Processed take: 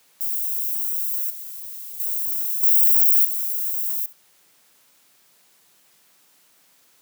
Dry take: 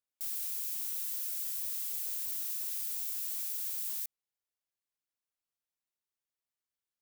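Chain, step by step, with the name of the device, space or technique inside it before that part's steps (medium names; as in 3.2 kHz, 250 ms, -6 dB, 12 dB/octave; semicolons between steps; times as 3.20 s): 1.30–2.00 s: treble shelf 6.2 kHz -11 dB; flutter echo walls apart 11.8 m, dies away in 0.2 s; 2.63–3.25 s: treble shelf 9.5 kHz +10 dB; turntable without a phono preamp (RIAA curve recording; white noise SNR 34 dB); high-pass 120 Hz 24 dB/octave; trim -6.5 dB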